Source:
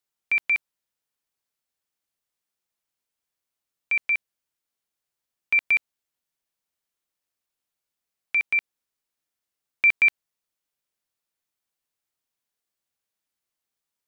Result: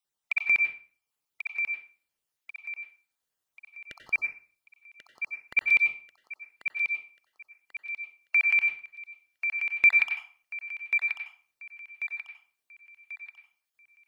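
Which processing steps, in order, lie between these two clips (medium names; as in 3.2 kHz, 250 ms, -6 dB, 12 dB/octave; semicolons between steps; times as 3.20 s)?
random holes in the spectrogram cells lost 34%; thinning echo 1089 ms, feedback 41%, high-pass 330 Hz, level -7 dB; on a send at -5 dB: reverberation RT60 0.40 s, pre-delay 87 ms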